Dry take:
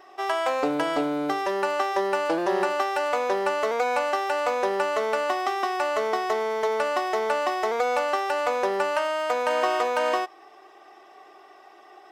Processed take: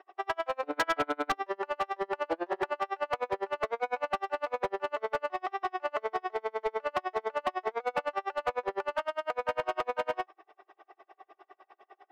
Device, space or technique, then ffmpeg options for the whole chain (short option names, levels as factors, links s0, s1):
helicopter radio: -filter_complex "[0:a]asettb=1/sr,asplit=3[s0][s1][s2];[s0]atrim=end=0.734[s3];[s1]atrim=start=0.73:end=1.32,asetpts=PTS-STARTPTS,afade=t=in:d=0.004:c=qsin,afade=t=out:st=0.586:d=0.004:c=qsin,equalizer=f=1600:w=0.72:g=12.5[s4];[s2]atrim=start=1.316[s5];[s3][s4]acrossfade=d=0.004:c1=hsin:c2=qsin[s6];[s6][s5]acrossfade=d=0.004:c1=qsin:c2=hsin,highpass=360,lowpass=2600,aeval=exprs='val(0)*pow(10,-37*(0.5-0.5*cos(2*PI*9.9*n/s))/20)':c=same,asoftclip=type=hard:threshold=0.075"